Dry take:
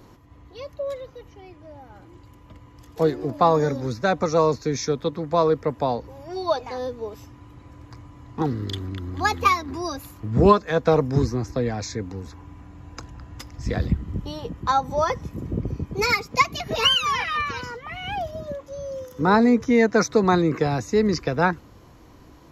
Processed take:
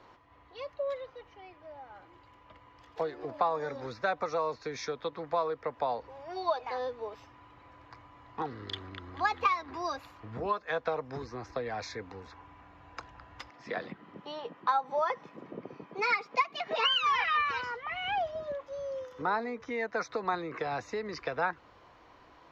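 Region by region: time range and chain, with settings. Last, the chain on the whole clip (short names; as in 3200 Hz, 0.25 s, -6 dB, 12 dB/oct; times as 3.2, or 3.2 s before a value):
13.5–16.89 HPF 170 Hz 24 dB/oct + high shelf 6600 Hz -9.5 dB
whole clip: high shelf 5700 Hz -9.5 dB; compressor 6:1, threshold -23 dBFS; three-band isolator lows -17 dB, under 530 Hz, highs -19 dB, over 5000 Hz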